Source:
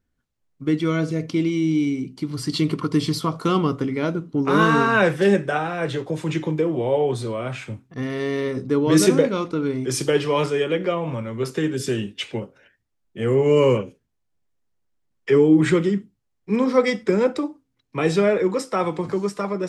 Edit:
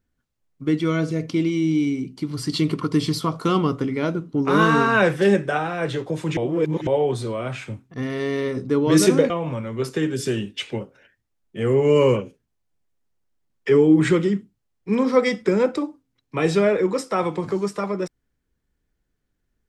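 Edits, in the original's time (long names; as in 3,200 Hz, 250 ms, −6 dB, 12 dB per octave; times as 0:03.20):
0:06.37–0:06.87: reverse
0:09.30–0:10.91: remove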